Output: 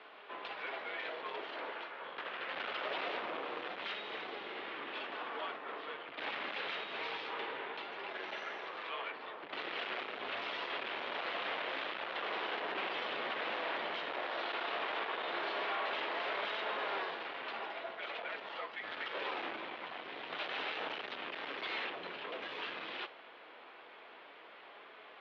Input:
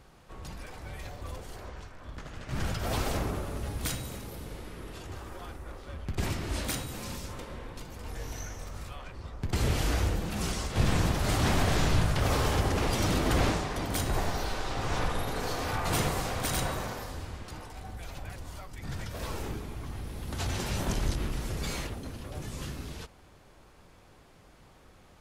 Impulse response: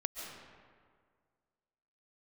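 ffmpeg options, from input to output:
-af "equalizer=frequency=2700:width_type=o:width=2.6:gain=6.5,alimiter=limit=-23dB:level=0:latency=1:release=308,asoftclip=type=hard:threshold=-36dB,highpass=frequency=480:width_type=q:width=0.5412,highpass=frequency=480:width_type=q:width=1.307,lowpass=frequency=3600:width_type=q:width=0.5176,lowpass=frequency=3600:width_type=q:width=0.7071,lowpass=frequency=3600:width_type=q:width=1.932,afreqshift=-91,flanger=delay=4.6:depth=9.9:regen=83:speed=0.24:shape=sinusoidal,volume=8dB"

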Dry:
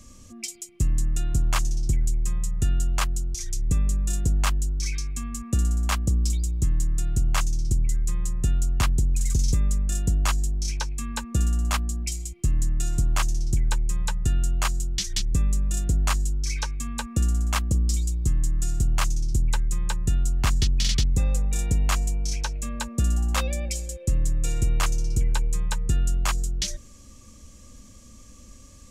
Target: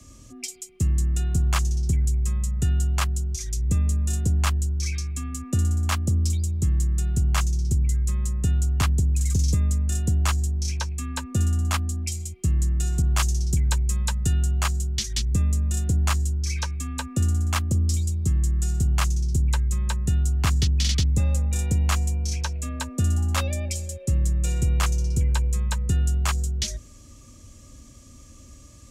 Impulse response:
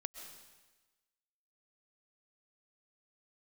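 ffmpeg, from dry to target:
-filter_complex "[0:a]afreqshift=23,asettb=1/sr,asplit=3[link_01][link_02][link_03];[link_01]atrim=end=13.024[link_04];[link_02]atrim=start=13.02:end=14.41,asetpts=PTS-STARTPTS,afade=type=in:duration=0.004:curve=qsin,afade=type=out:start_time=1.386:duration=0.004:curve=qsin,adynamicequalizer=threshold=0.00631:dfrequency=3000:dqfactor=0.7:tfrequency=3000:tqfactor=0.7:attack=5:release=100:ratio=0.375:range=2.5:mode=boostabove:tftype=highshelf[link_05];[link_03]atrim=start=14.406[link_06];[link_04][link_05]acrossfade=duration=0.004:curve1=hsin:curve2=qsin[link_07];[link_07][link_06]acrossfade=duration=0.004:curve1=qsin:curve2=hsin"

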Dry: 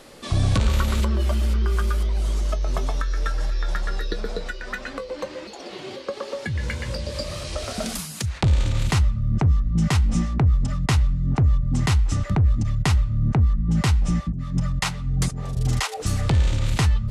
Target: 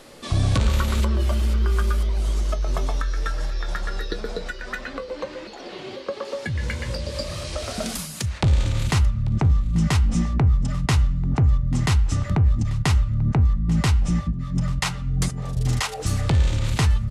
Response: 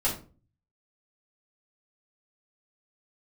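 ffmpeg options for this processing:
-filter_complex "[0:a]bandreject=frequency=197.7:width_type=h:width=4,bandreject=frequency=395.4:width_type=h:width=4,bandreject=frequency=593.1:width_type=h:width=4,bandreject=frequency=790.8:width_type=h:width=4,bandreject=frequency=988.5:width_type=h:width=4,bandreject=frequency=1186.2:width_type=h:width=4,bandreject=frequency=1383.9:width_type=h:width=4,bandreject=frequency=1581.6:width_type=h:width=4,bandreject=frequency=1779.3:width_type=h:width=4,bandreject=frequency=1977:width_type=h:width=4,bandreject=frequency=2174.7:width_type=h:width=4,bandreject=frequency=2372.4:width_type=h:width=4,bandreject=frequency=2570.1:width_type=h:width=4,bandreject=frequency=2767.8:width_type=h:width=4,bandreject=frequency=2965.5:width_type=h:width=4,asplit=2[link_01][link_02];[1:a]atrim=start_sample=2205[link_03];[link_02][link_03]afir=irnorm=-1:irlink=0,volume=-29.5dB[link_04];[link_01][link_04]amix=inputs=2:normalize=0,asettb=1/sr,asplit=3[link_05][link_06][link_07];[link_05]atrim=end=4.814[link_08];[link_06]atrim=start=4.81:end=6.25,asetpts=PTS-STARTPTS,afade=type=in:duration=0.004:curve=qsin,afade=type=out:start_time=1.436:duration=0.004:curve=qsin,acrossover=split=5200[link_09][link_10];[link_10]acompressor=threshold=-57dB:ratio=4:attack=1:release=60[link_11];[link_09][link_11]amix=inputs=2:normalize=0[link_12];[link_07]atrim=start=6.246[link_13];[link_08][link_12]acrossfade=duration=0.004:curve1=hsin:curve2=qsin[link_14];[link_14][link_13]acrossfade=duration=0.004:curve1=qsin:curve2=hsin,aecho=1:1:840:0.0944"

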